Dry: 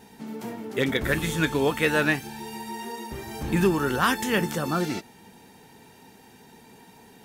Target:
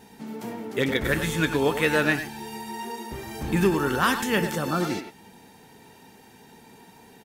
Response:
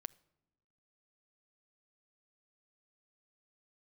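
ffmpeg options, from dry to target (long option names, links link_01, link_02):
-filter_complex "[0:a]asplit=2[link_01][link_02];[link_02]adelay=100,highpass=300,lowpass=3400,asoftclip=type=hard:threshold=-20dB,volume=-7dB[link_03];[link_01][link_03]amix=inputs=2:normalize=0"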